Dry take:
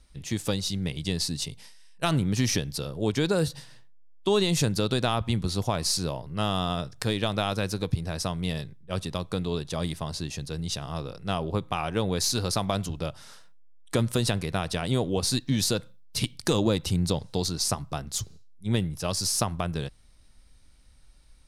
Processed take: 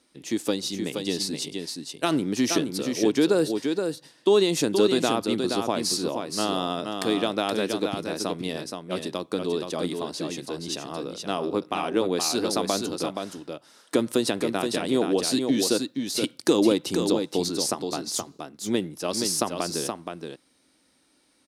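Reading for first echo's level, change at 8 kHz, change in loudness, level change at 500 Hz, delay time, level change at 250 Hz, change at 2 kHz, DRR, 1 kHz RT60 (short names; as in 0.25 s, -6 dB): -5.5 dB, +1.0 dB, +2.0 dB, +5.5 dB, 0.473 s, +4.5 dB, +1.5 dB, none, none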